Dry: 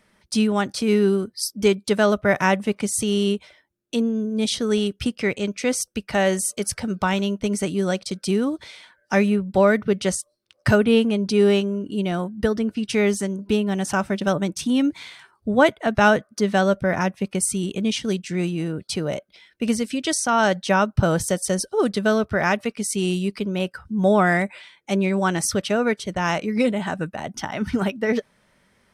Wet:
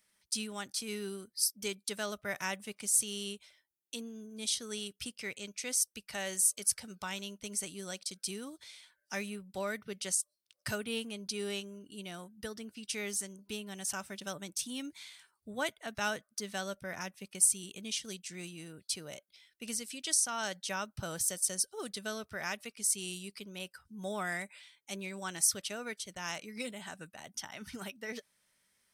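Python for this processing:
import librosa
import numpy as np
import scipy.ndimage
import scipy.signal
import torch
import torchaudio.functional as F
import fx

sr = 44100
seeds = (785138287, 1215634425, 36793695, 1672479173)

y = librosa.effects.preemphasis(x, coef=0.9, zi=[0.0])
y = y * 10.0 ** (-3.0 / 20.0)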